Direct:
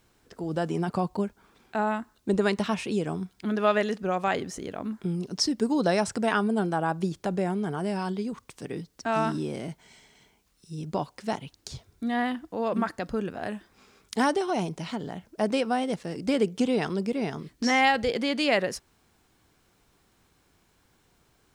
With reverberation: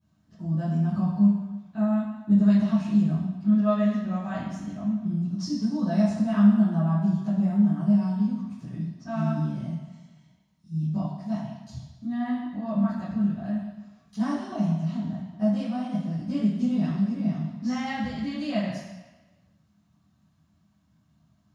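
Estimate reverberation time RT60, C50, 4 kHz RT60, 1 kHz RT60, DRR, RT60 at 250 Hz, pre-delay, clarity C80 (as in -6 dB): 1.2 s, 0.5 dB, 1.1 s, 1.2 s, -14.0 dB, 0.95 s, 3 ms, 4.0 dB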